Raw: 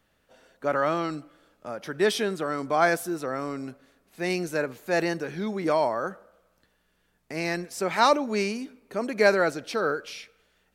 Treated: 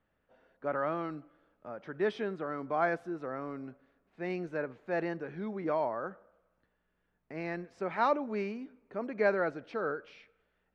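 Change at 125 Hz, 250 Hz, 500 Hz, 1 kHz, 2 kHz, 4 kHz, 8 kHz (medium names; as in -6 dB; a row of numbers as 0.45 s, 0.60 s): -7.5 dB, -7.5 dB, -7.5 dB, -8.0 dB, -9.5 dB, -19.0 dB, under -25 dB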